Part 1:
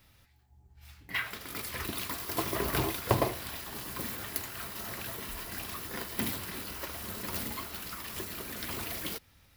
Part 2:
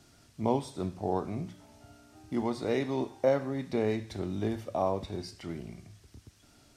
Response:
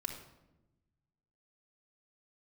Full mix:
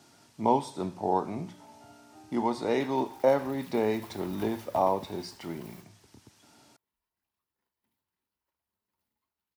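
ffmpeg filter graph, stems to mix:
-filter_complex "[0:a]adelay=1650,volume=-17dB[a];[1:a]highpass=160,volume=2dB,asplit=2[b][c];[c]apad=whole_len=494493[d];[a][d]sidechaingate=range=-33dB:threshold=-48dB:ratio=16:detection=peak[e];[e][b]amix=inputs=2:normalize=0,equalizer=f=900:w=4.8:g=9.5"

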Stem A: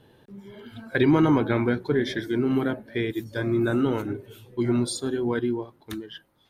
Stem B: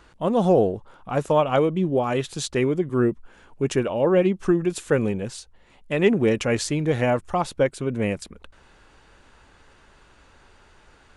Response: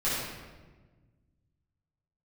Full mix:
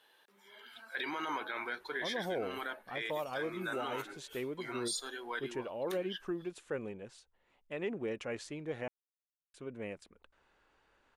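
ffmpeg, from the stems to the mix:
-filter_complex "[0:a]highpass=1.1k,volume=-1.5dB[a];[1:a]bass=f=250:g=-9,treble=f=4k:g=-7,adelay=1800,volume=-15dB,asplit=3[b][c][d];[b]atrim=end=8.88,asetpts=PTS-STARTPTS,afade=t=out:st=8.876:d=0.004:c=hsin[e];[c]atrim=start=8.88:end=9.54,asetpts=PTS-STARTPTS,volume=0[f];[d]atrim=start=9.54,asetpts=PTS-STARTPTS,afade=t=in:d=0.004:c=hsin[g];[e][f][g]concat=n=3:v=0:a=1[h];[a][h]amix=inputs=2:normalize=0,alimiter=level_in=3.5dB:limit=-24dB:level=0:latency=1:release=19,volume=-3.5dB"

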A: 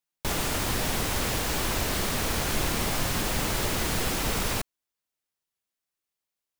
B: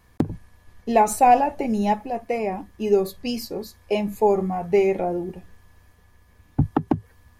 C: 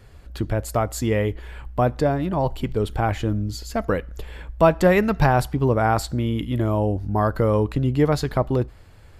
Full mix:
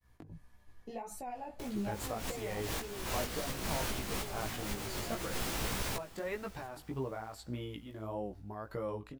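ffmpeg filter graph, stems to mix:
-filter_complex "[0:a]adelay=1350,volume=-5dB,asplit=2[a][b];[b]volume=-21dB[c];[1:a]acompressor=threshold=-27dB:ratio=6,alimiter=limit=-23dB:level=0:latency=1:release=120,flanger=delay=0.5:depth=9.4:regen=61:speed=0.81:shape=sinusoidal,volume=-3.5dB,afade=t=out:st=2.75:d=0.34:silence=0.398107,asplit=2[d][e];[2:a]lowshelf=f=200:g=-10.5,acompressor=threshold=-24dB:ratio=6,tremolo=f=1.6:d=0.59,adelay=1350,volume=-7dB[f];[e]apad=whole_len=350321[g];[a][g]sidechaincompress=threshold=-50dB:ratio=10:attack=12:release=127[h];[c]aecho=0:1:701|1402|2103|2804|3505|4206:1|0.41|0.168|0.0689|0.0283|0.0116[i];[h][d][f][i]amix=inputs=4:normalize=0,agate=range=-33dB:threshold=-59dB:ratio=3:detection=peak,flanger=delay=15:depth=4.5:speed=1.7"

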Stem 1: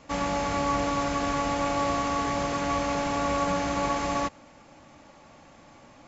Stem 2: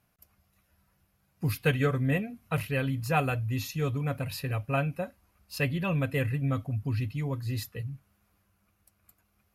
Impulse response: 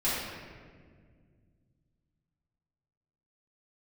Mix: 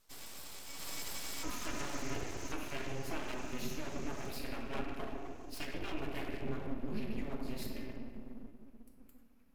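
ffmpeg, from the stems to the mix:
-filter_complex "[0:a]highpass=f=1.2k:w=0.5412,highpass=f=1.2k:w=1.3066,equalizer=f=6.3k:w=2.4:g=14.5,volume=-7dB,afade=t=in:st=0.73:d=0.21:silence=0.316228,afade=t=out:st=1.97:d=0.4:silence=0.298538,asplit=2[a][b];[b]volume=-12.5dB[c];[1:a]alimiter=limit=-20dB:level=0:latency=1:release=260,volume=-10.5dB,asplit=3[d][e][f];[e]volume=-6dB[g];[f]apad=whole_len=267803[h];[a][h]sidechaincompress=threshold=-52dB:ratio=8:attack=16:release=219[i];[2:a]atrim=start_sample=2205[j];[c][g]amix=inputs=2:normalize=0[k];[k][j]afir=irnorm=-1:irlink=0[l];[i][d][l]amix=inputs=3:normalize=0,acrossover=split=130[m][n];[n]acompressor=threshold=-39dB:ratio=2[o];[m][o]amix=inputs=2:normalize=0,aeval=exprs='abs(val(0))':c=same"

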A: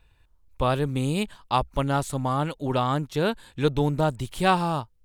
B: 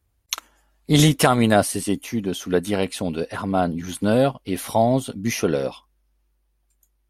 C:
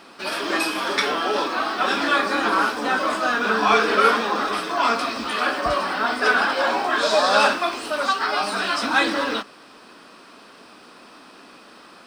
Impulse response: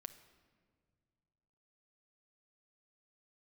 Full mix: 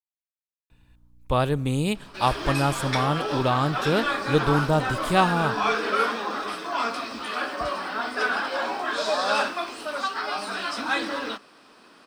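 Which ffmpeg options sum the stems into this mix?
-filter_complex "[0:a]aeval=exprs='val(0)+0.00112*(sin(2*PI*60*n/s)+sin(2*PI*2*60*n/s)/2+sin(2*PI*3*60*n/s)/3+sin(2*PI*4*60*n/s)/4+sin(2*PI*5*60*n/s)/5)':c=same,adelay=700,volume=-1dB,asplit=2[a][b];[b]volume=-6dB[c];[2:a]adelay=1950,volume=-6.5dB[d];[3:a]atrim=start_sample=2205[e];[c][e]afir=irnorm=-1:irlink=0[f];[a][d][f]amix=inputs=3:normalize=0"

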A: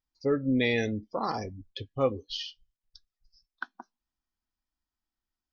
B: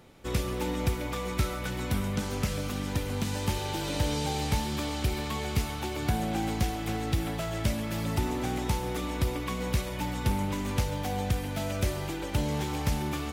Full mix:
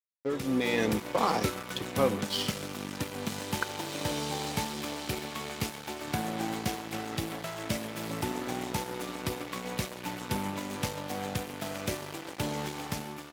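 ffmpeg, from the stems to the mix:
-filter_complex "[0:a]alimiter=limit=-20dB:level=0:latency=1,volume=-2.5dB[a];[1:a]adelay=50,volume=-7dB[b];[a][b]amix=inputs=2:normalize=0,aeval=exprs='sgn(val(0))*max(abs(val(0))-0.00794,0)':c=same,dynaudnorm=f=280:g=5:m=9dB,highpass=160"

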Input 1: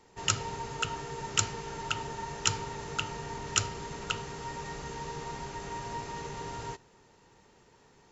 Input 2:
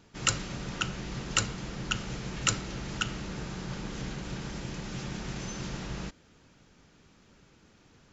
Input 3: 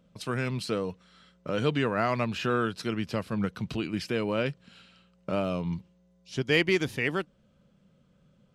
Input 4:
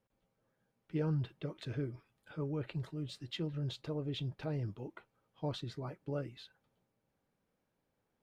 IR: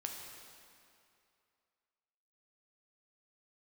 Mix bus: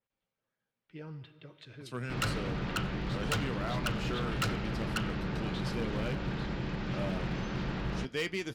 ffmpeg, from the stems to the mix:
-filter_complex "[1:a]firequalizer=gain_entry='entry(1600,0);entry(4400,-10);entry(6500,-25)':delay=0.05:min_phase=1,adelay=1950,volume=3dB[a];[2:a]flanger=delay=7.4:depth=8:regen=56:speed=0.27:shape=sinusoidal,adelay=1650,volume=-6dB[b];[3:a]equalizer=f=2.7k:w=0.46:g=10.5,volume=-15.5dB,asplit=2[c][d];[d]volume=-3.5dB[e];[4:a]atrim=start_sample=2205[f];[e][f]afir=irnorm=-1:irlink=0[g];[a][b][c][g]amix=inputs=4:normalize=0,volume=27.5dB,asoftclip=hard,volume=-27.5dB,adynamicequalizer=threshold=0.00316:dfrequency=3300:dqfactor=0.7:tfrequency=3300:tqfactor=0.7:attack=5:release=100:ratio=0.375:range=2:mode=boostabove:tftype=highshelf"

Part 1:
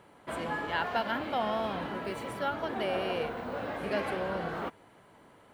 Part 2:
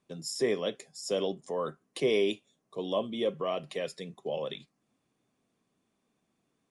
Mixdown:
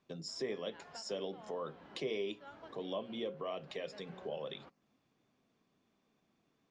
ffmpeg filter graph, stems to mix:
-filter_complex "[0:a]aeval=exprs='sgn(val(0))*max(abs(val(0))-0.00266,0)':c=same,volume=-17.5dB[a];[1:a]acompressor=threshold=-45dB:ratio=2,bandreject=f=60:t=h:w=6,bandreject=f=120:t=h:w=6,bandreject=f=180:t=h:w=6,bandreject=f=240:t=h:w=6,bandreject=f=300:t=h:w=6,bandreject=f=360:t=h:w=6,bandreject=f=420:t=h:w=6,bandreject=f=480:t=h:w=6,bandreject=f=540:t=h:w=6,volume=1dB,asplit=2[b][c];[c]apad=whole_len=244135[d];[a][d]sidechaincompress=threshold=-49dB:ratio=4:attack=11:release=242[e];[e][b]amix=inputs=2:normalize=0,lowpass=f=6.1k:w=0.5412,lowpass=f=6.1k:w=1.3066"

